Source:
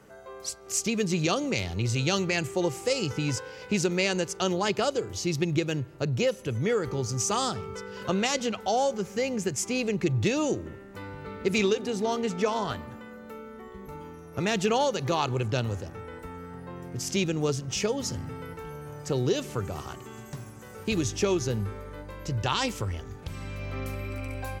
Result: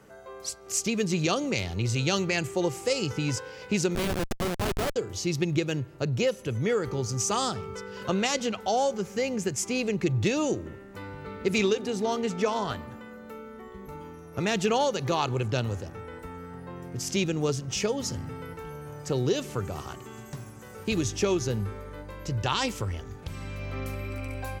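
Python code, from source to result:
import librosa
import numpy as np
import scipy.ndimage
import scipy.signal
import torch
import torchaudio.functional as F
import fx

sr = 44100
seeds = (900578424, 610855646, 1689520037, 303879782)

y = fx.schmitt(x, sr, flips_db=-25.5, at=(3.95, 4.96))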